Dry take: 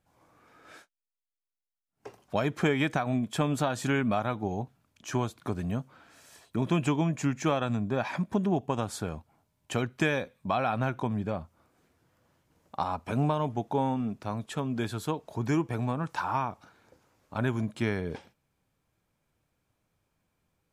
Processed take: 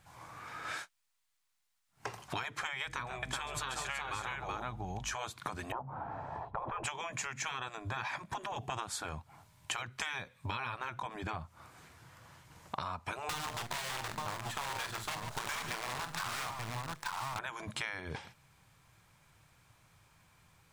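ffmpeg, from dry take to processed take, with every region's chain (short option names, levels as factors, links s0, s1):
-filter_complex "[0:a]asettb=1/sr,asplit=3[s0][s1][s2];[s0]atrim=end=2.854[s3];[s1]atrim=start=2.85:end=5.14,asetpts=PTS-STARTPTS,afade=t=in:d=0.004:c=qsin,afade=t=out:st=2.286:d=0.004:c=qsin,aeval=exprs='val(0)+0.00398*(sin(2*PI*50*n/s)+sin(2*PI*2*50*n/s)/2+sin(2*PI*3*50*n/s)/3+sin(2*PI*4*50*n/s)/4+sin(2*PI*5*50*n/s)/5)':c=same,aecho=1:1:136|376:0.168|0.531,atrim=end_sample=100989[s4];[s2]atrim=start=5.136[s5];[s3][s4]acrossfade=d=0.004:c1=hsin:c2=qsin[s6];[s6][s5]acrossfade=d=0.004:c1=qsin:c2=hsin,asettb=1/sr,asplit=3[s7][s8][s9];[s7]atrim=end=5.724[s10];[s8]atrim=start=5.72:end=6.84,asetpts=PTS-STARTPTS,afade=t=in:d=0.004:c=qsin,afade=t=out:st=1.116:d=0.004:c=qsin,lowpass=f=830:t=q:w=4.1,lowshelf=f=460:g=10.5[s11];[s9]atrim=start=6.836[s12];[s10][s11]acrossfade=d=0.004:c1=hsin:c2=qsin[s13];[s13][s12]acrossfade=d=0.004:c1=qsin:c2=hsin,asettb=1/sr,asplit=3[s14][s15][s16];[s14]atrim=end=13.294[s17];[s15]atrim=start=13.29:end=17.39,asetpts=PTS-STARTPTS,afade=t=in:d=0.004:c=qsin,afade=t=out:st=4.096:d=0.004:c=qsin,bandreject=f=50:t=h:w=6,bandreject=f=100:t=h:w=6,bandreject=f=150:t=h:w=6,bandreject=f=200:t=h:w=6,bandreject=f=250:t=h:w=6,bandreject=f=300:t=h:w=6,bandreject=f=350:t=h:w=6,bandreject=f=400:t=h:w=6,bandreject=f=450:t=h:w=6,bandreject=f=500:t=h:w=6,acrusher=bits=6:dc=4:mix=0:aa=0.000001,aecho=1:1:44|138|143|885:0.299|0.188|0.126|0.376,atrim=end_sample=180810[s18];[s16]atrim=start=17.386[s19];[s17][s18]acrossfade=d=0.004:c1=hsin:c2=qsin[s20];[s20][s19]acrossfade=d=0.004:c1=qsin:c2=hsin,afftfilt=real='re*lt(hypot(re,im),0.126)':imag='im*lt(hypot(re,im),0.126)':win_size=1024:overlap=0.75,equalizer=f=125:t=o:w=1:g=6,equalizer=f=250:t=o:w=1:g=-6,equalizer=f=500:t=o:w=1:g=-4,equalizer=f=1000:t=o:w=1:g=6,equalizer=f=2000:t=o:w=1:g=5,equalizer=f=4000:t=o:w=1:g=4,equalizer=f=8000:t=o:w=1:g=5,acompressor=threshold=0.00562:ratio=8,volume=2.82"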